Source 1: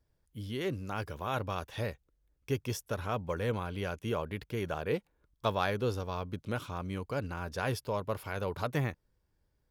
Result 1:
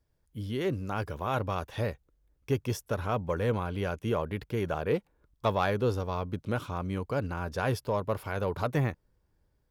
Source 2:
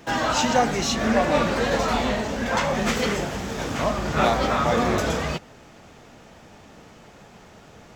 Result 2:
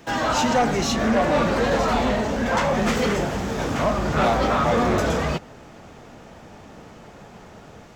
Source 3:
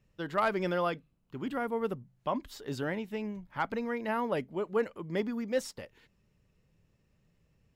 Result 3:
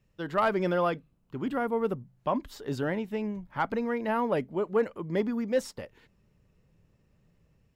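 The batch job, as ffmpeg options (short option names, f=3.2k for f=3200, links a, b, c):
-filter_complex "[0:a]acrossover=split=1600[a][b];[a]dynaudnorm=f=100:g=5:m=4.5dB[c];[c][b]amix=inputs=2:normalize=0,asoftclip=type=tanh:threshold=-13.5dB"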